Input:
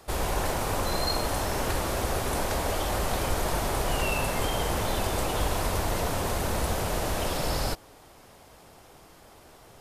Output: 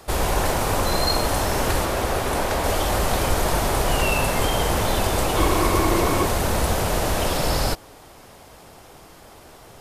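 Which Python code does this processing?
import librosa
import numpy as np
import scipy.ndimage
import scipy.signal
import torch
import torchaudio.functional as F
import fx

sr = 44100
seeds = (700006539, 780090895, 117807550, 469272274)

y = fx.bass_treble(x, sr, bass_db=-3, treble_db=-4, at=(1.85, 2.64))
y = fx.small_body(y, sr, hz=(340.0, 1100.0, 2200.0), ring_ms=45, db=12, at=(5.37, 6.25))
y = F.gain(torch.from_numpy(y), 6.5).numpy()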